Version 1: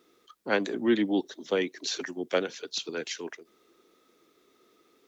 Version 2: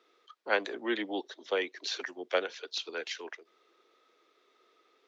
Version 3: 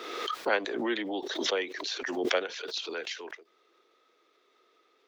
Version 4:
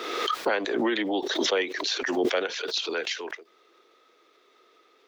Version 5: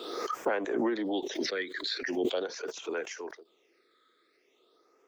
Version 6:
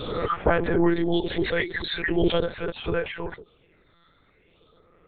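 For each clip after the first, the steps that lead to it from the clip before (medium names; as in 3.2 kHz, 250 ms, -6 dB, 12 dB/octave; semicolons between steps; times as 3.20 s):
three-band isolator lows -23 dB, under 410 Hz, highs -20 dB, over 5.3 kHz
swell ahead of each attack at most 35 dB/s
peak limiter -21.5 dBFS, peak gain reduction 10 dB; trim +6.5 dB
phase shifter stages 8, 0.43 Hz, lowest notch 780–4300 Hz; trim -4 dB
monotone LPC vocoder at 8 kHz 170 Hz; trim +8.5 dB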